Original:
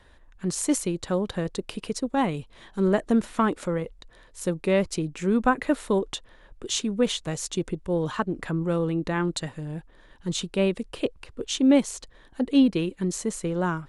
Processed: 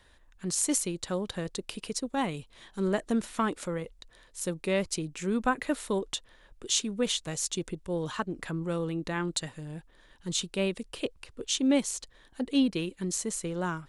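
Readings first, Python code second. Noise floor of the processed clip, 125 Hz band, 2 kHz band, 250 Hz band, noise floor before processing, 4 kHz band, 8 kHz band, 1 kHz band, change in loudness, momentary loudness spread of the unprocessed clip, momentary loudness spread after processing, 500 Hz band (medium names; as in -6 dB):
-60 dBFS, -6.5 dB, -3.5 dB, -6.5 dB, -54 dBFS, -0.5 dB, +1.5 dB, -5.5 dB, -5.0 dB, 13 LU, 12 LU, -6.0 dB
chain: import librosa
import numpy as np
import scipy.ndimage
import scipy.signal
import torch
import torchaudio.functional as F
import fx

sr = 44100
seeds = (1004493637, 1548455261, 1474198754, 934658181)

y = fx.high_shelf(x, sr, hz=2500.0, db=9.0)
y = F.gain(torch.from_numpy(y), -6.5).numpy()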